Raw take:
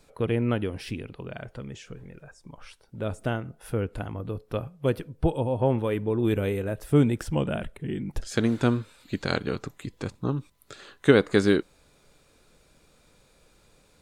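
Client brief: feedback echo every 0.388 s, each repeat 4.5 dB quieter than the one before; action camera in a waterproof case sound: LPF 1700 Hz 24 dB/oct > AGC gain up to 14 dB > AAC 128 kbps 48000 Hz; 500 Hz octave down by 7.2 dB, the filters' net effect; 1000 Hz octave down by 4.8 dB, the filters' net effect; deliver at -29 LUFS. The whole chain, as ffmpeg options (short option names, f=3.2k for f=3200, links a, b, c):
-af "lowpass=f=1.7k:w=0.5412,lowpass=f=1.7k:w=1.3066,equalizer=f=500:t=o:g=-8.5,equalizer=f=1k:t=o:g=-3.5,aecho=1:1:388|776|1164|1552|1940|2328|2716|3104|3492:0.596|0.357|0.214|0.129|0.0772|0.0463|0.0278|0.0167|0.01,dynaudnorm=m=14dB,volume=-3dB" -ar 48000 -c:a aac -b:a 128k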